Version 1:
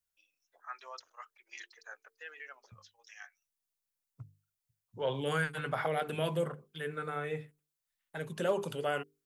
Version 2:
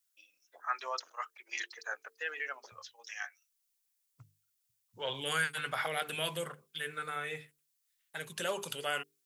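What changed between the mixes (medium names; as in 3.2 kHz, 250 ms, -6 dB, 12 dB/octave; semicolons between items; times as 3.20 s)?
first voice +9.5 dB; second voice: add tilt shelf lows -9.5 dB, about 1.2 kHz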